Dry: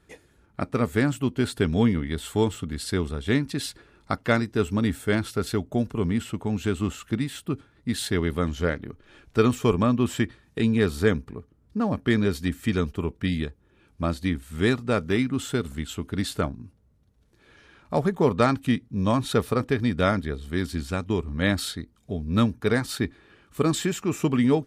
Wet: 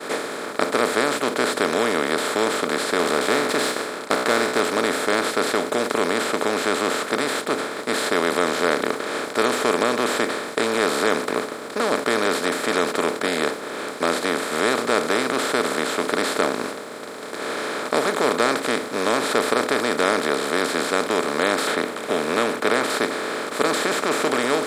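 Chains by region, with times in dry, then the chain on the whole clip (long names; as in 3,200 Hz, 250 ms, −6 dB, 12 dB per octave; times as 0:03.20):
0:02.99–0:04.60: leveller curve on the samples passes 2 + tuned comb filter 62 Hz, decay 0.33 s, mix 50%
0:21.67–0:22.90: high shelf with overshoot 3,700 Hz −8.5 dB, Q 3 + multiband upward and downward compressor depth 40%
whole clip: compressor on every frequency bin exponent 0.2; downward expander −16 dBFS; high-pass filter 390 Hz 12 dB per octave; level −3.5 dB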